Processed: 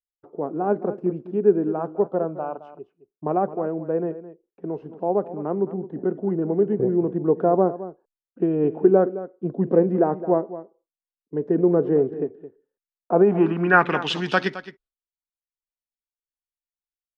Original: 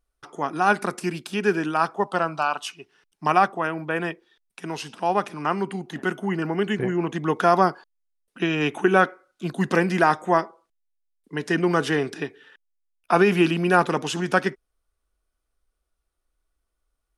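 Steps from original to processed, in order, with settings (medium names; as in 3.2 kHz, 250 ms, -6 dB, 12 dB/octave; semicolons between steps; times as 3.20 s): expander -42 dBFS; low-pass sweep 490 Hz -> 4.1 kHz, 13.11–14.17 s; delay 216 ms -14.5 dB; trim -1 dB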